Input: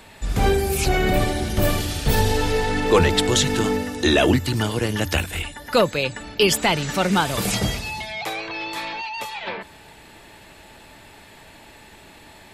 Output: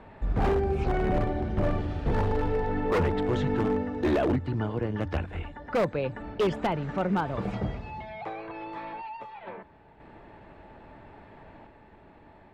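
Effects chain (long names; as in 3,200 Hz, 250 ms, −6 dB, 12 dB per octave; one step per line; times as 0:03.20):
low-pass filter 1,200 Hz 12 dB per octave
in parallel at −3 dB: downward compressor 6 to 1, threshold −31 dBFS, peak gain reduction 18 dB
on the sum: sample-and-hold tremolo 1.2 Hz
wave folding −13.5 dBFS
level −5 dB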